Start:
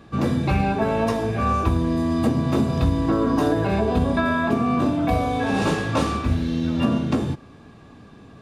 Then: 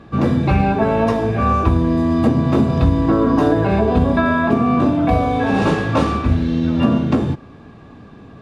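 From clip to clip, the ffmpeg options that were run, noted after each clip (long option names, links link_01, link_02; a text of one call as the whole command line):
ffmpeg -i in.wav -af "lowpass=frequency=2600:poles=1,volume=5.5dB" out.wav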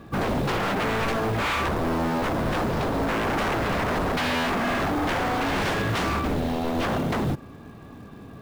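ffmpeg -i in.wav -af "aeval=exprs='0.133*(abs(mod(val(0)/0.133+3,4)-2)-1)':channel_layout=same,acrusher=bits=6:mode=log:mix=0:aa=0.000001,volume=-2.5dB" out.wav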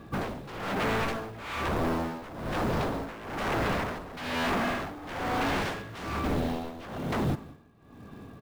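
ffmpeg -i in.wav -af "aecho=1:1:191:0.133,tremolo=f=1.1:d=0.83,volume=-2.5dB" out.wav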